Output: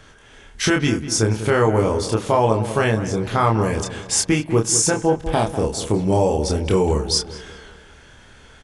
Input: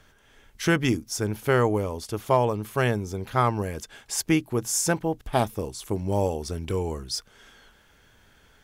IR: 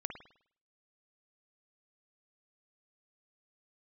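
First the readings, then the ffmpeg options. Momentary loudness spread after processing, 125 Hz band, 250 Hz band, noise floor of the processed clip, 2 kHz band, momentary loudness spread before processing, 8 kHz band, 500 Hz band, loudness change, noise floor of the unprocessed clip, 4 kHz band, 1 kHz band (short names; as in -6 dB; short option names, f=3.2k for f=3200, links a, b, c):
5 LU, +6.5 dB, +6.5 dB, -47 dBFS, +5.0 dB, 9 LU, +9.0 dB, +7.0 dB, +7.0 dB, -58 dBFS, +9.0 dB, +5.5 dB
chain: -filter_complex "[0:a]alimiter=limit=-17dB:level=0:latency=1:release=230,asplit=2[a][b];[b]adelay=27,volume=-3.5dB[c];[a][c]amix=inputs=2:normalize=0,asplit=2[d][e];[e]adelay=197,lowpass=f=1.7k:p=1,volume=-11dB,asplit=2[f][g];[g]adelay=197,lowpass=f=1.7k:p=1,volume=0.47,asplit=2[h][i];[i]adelay=197,lowpass=f=1.7k:p=1,volume=0.47,asplit=2[j][k];[k]adelay=197,lowpass=f=1.7k:p=1,volume=0.47,asplit=2[l][m];[m]adelay=197,lowpass=f=1.7k:p=1,volume=0.47[n];[d][f][h][j][l][n]amix=inputs=6:normalize=0,asplit=2[o][p];[1:a]atrim=start_sample=2205[q];[p][q]afir=irnorm=-1:irlink=0,volume=-15dB[r];[o][r]amix=inputs=2:normalize=0,aresample=22050,aresample=44100,volume=8dB"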